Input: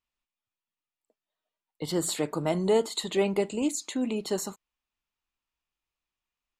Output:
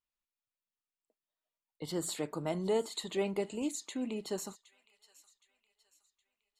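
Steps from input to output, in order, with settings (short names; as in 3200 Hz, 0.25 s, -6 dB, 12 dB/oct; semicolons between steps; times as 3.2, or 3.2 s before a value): thin delay 0.767 s, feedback 40%, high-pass 1600 Hz, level -18 dB; gain -7.5 dB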